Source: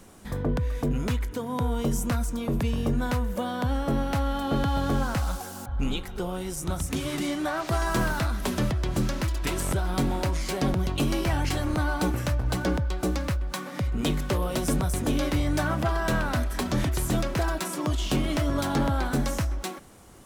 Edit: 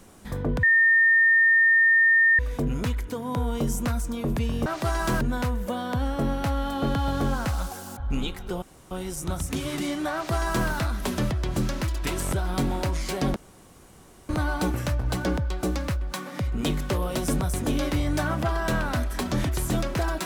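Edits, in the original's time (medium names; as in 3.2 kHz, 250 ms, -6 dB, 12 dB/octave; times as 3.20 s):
0.63 s: add tone 1.82 kHz -15 dBFS 1.76 s
6.31 s: insert room tone 0.29 s
7.53–8.08 s: copy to 2.90 s
10.76–11.69 s: room tone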